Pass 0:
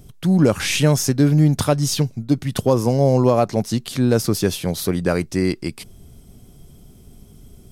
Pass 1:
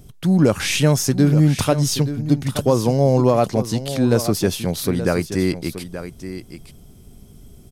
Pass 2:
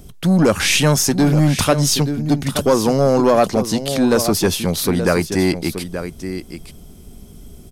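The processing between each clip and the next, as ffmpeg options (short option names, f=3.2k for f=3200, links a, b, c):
-af "aecho=1:1:877:0.266"
-filter_complex "[0:a]equalizer=f=120:t=o:w=0.25:g=-14,acrossover=split=840[a][b];[a]asoftclip=type=tanh:threshold=-15dB[c];[c][b]amix=inputs=2:normalize=0,volume=5.5dB"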